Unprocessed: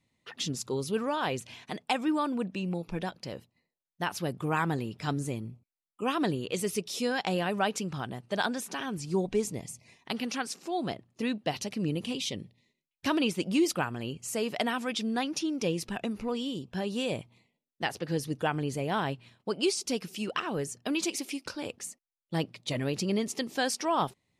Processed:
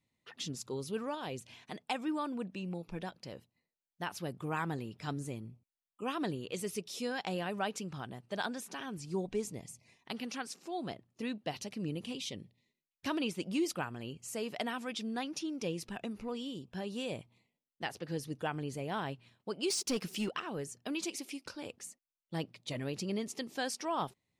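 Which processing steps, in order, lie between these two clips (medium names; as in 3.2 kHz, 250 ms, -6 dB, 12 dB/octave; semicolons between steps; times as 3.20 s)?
1.14–1.62 s: dynamic bell 1.4 kHz, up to -7 dB, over -44 dBFS, Q 0.74; 19.70–20.29 s: waveshaping leveller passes 2; trim -7 dB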